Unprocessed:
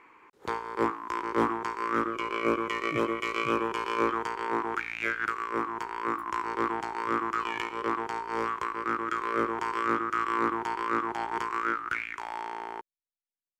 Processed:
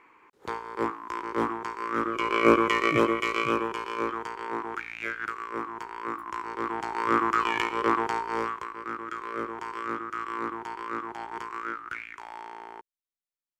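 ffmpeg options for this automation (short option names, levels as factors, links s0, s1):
-af "volume=6.68,afade=t=in:st=1.94:d=0.58:silence=0.334965,afade=t=out:st=2.52:d=1.35:silence=0.281838,afade=t=in:st=6.62:d=0.57:silence=0.375837,afade=t=out:st=8.07:d=0.58:silence=0.298538"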